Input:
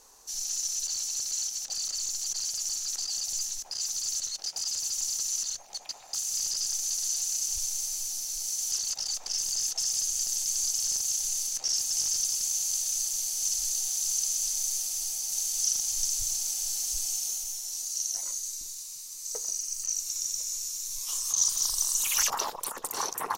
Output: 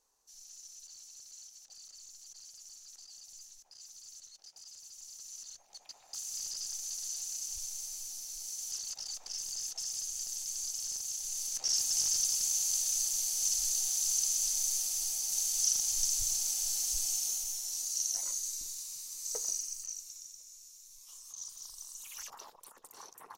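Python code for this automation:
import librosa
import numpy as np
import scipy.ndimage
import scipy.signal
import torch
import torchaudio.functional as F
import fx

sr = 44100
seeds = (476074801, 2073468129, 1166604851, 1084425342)

y = fx.gain(x, sr, db=fx.line((4.93, -20.0), (6.22, -9.0), (11.2, -9.0), (11.73, -2.0), (19.51, -2.0), (19.97, -12.0), (20.39, -19.5)))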